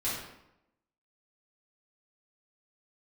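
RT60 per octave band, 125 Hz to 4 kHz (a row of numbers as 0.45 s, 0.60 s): 0.85 s, 0.95 s, 0.85 s, 0.85 s, 0.75 s, 0.60 s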